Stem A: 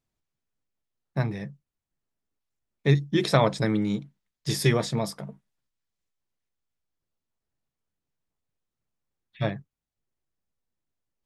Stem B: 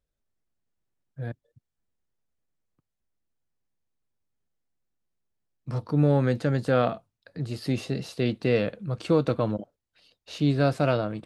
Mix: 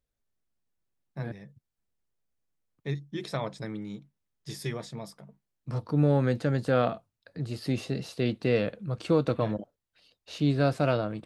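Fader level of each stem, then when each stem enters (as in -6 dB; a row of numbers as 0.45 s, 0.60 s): -12.0 dB, -2.0 dB; 0.00 s, 0.00 s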